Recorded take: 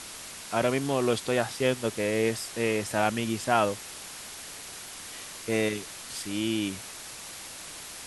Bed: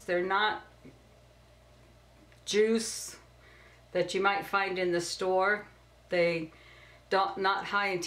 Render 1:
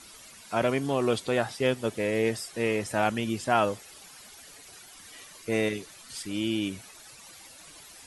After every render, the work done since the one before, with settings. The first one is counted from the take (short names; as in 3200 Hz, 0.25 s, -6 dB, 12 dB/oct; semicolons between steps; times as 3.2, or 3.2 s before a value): denoiser 12 dB, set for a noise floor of -42 dBFS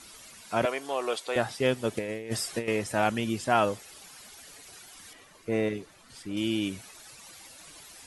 0.65–1.36 Chebyshev high-pass 620 Hz; 1.97–2.68 negative-ratio compressor -31 dBFS, ratio -0.5; 5.13–6.37 high shelf 2300 Hz -11.5 dB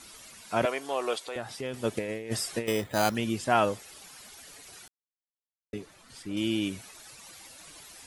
1.18–1.74 compressor 2:1, threshold -38 dBFS; 2.67–3.15 careless resampling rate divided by 8×, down filtered, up hold; 4.88–5.73 mute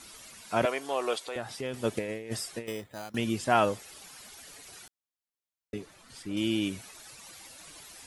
1.93–3.14 fade out, to -23 dB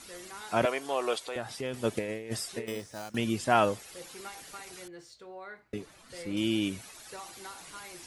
add bed -18 dB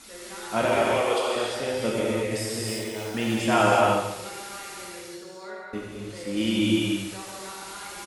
feedback echo 0.142 s, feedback 33%, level -10.5 dB; non-linear reverb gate 0.38 s flat, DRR -5.5 dB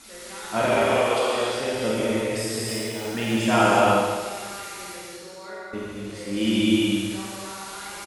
reverse bouncing-ball echo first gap 50 ms, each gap 1.4×, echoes 5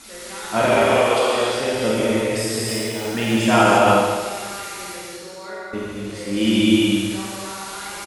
gain +4.5 dB; limiter -3 dBFS, peak gain reduction 3 dB